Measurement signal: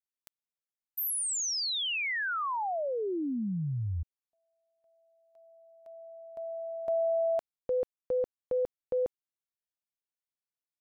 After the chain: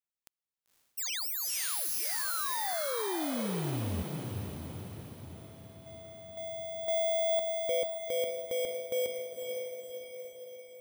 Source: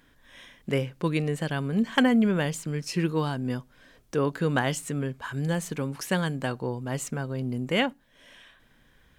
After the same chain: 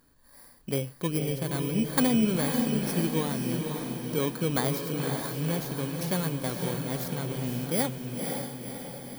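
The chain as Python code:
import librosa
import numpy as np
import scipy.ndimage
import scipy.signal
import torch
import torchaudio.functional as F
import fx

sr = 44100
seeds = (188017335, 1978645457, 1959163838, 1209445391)

y = fx.bit_reversed(x, sr, seeds[0], block=16)
y = fx.echo_diffused(y, sr, ms=525, feedback_pct=55, wet_db=-4)
y = y * 10.0 ** (-3.0 / 20.0)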